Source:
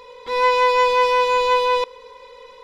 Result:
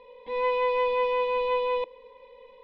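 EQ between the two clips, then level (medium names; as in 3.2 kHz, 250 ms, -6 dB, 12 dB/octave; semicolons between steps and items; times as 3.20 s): low-pass 2.9 kHz 24 dB/octave; peaking EQ 320 Hz +9.5 dB 0.29 oct; static phaser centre 360 Hz, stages 6; -5.0 dB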